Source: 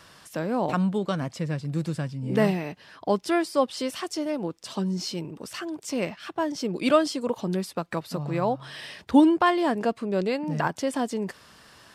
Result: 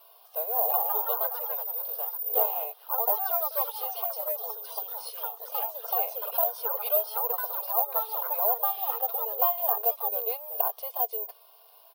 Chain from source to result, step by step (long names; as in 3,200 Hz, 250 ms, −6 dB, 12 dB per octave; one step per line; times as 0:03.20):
parametric band 1,300 Hz −10 dB 0.39 octaves
comb filter 2.8 ms, depth 72%
downward compressor, threshold −21 dBFS, peak gain reduction 11 dB
phaser with its sweep stopped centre 760 Hz, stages 4
delay with pitch and tempo change per echo 241 ms, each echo +2 semitones, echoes 3
high-frequency loss of the air 270 metres
bad sample-rate conversion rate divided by 3×, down filtered, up zero stuff
linear-phase brick-wall high-pass 420 Hz
0:03.52–0:05.57: saturating transformer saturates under 1,700 Hz
level −1 dB